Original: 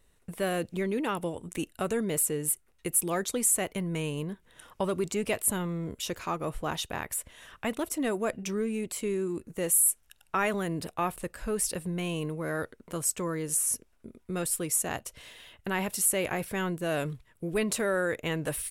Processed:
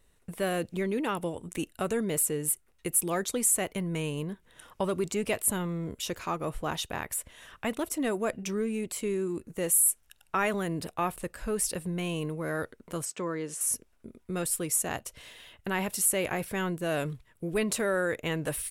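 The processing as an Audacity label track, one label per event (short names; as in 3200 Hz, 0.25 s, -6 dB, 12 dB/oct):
13.050000	13.610000	BPF 190–5200 Hz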